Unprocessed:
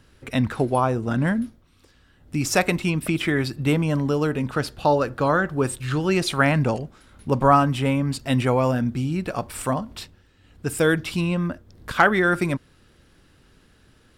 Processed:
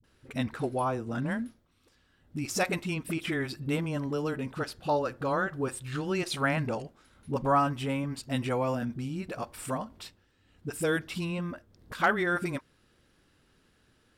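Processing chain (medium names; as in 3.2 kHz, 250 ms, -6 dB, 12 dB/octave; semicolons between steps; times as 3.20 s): bass shelf 130 Hz -6 dB; phase dispersion highs, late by 40 ms, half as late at 330 Hz; trim -8 dB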